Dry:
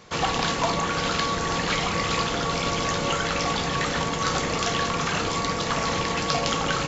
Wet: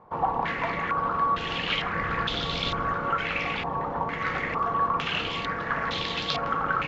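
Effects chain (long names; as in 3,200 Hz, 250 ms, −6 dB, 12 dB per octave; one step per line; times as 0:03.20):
0:01.96–0:02.93: low-shelf EQ 130 Hz +7.5 dB
low-pass on a step sequencer 2.2 Hz 930–3,600 Hz
level −7 dB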